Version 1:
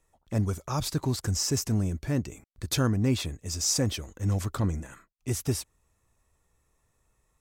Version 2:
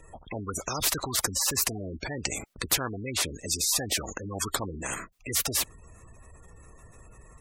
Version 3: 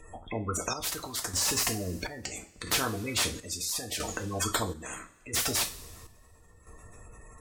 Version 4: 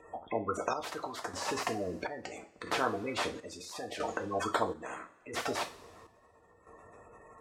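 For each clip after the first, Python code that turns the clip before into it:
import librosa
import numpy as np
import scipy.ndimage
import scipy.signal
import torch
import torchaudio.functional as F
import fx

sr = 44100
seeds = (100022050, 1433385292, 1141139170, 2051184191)

y1 = fx.spec_gate(x, sr, threshold_db=-25, keep='strong')
y1 = fx.notch(y1, sr, hz=870.0, q=12.0)
y1 = fx.spectral_comp(y1, sr, ratio=4.0)
y1 = y1 * 10.0 ** (4.0 / 20.0)
y2 = fx.rev_double_slope(y1, sr, seeds[0], early_s=0.29, late_s=2.0, knee_db=-21, drr_db=3.0)
y2 = fx.chopper(y2, sr, hz=0.75, depth_pct=60, duty_pct=55)
y2 = fx.slew_limit(y2, sr, full_power_hz=390.0)
y3 = fx.bandpass_q(y2, sr, hz=710.0, q=0.85)
y3 = y3 * 10.0 ** (4.0 / 20.0)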